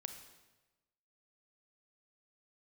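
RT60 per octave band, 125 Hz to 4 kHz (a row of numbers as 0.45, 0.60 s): 1.3, 1.2, 1.2, 1.1, 1.0, 0.95 s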